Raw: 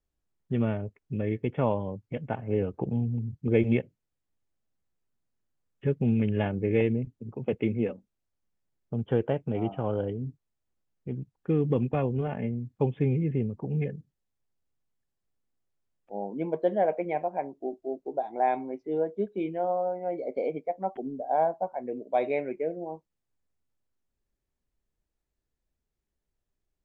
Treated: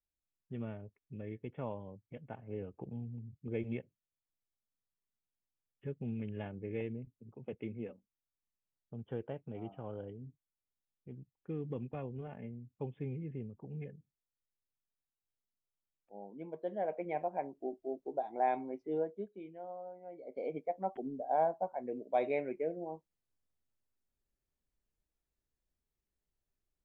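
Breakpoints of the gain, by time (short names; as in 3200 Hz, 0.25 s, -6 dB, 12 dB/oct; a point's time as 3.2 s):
16.57 s -14.5 dB
17.23 s -6 dB
18.98 s -6 dB
19.41 s -17.5 dB
20.16 s -17.5 dB
20.58 s -5.5 dB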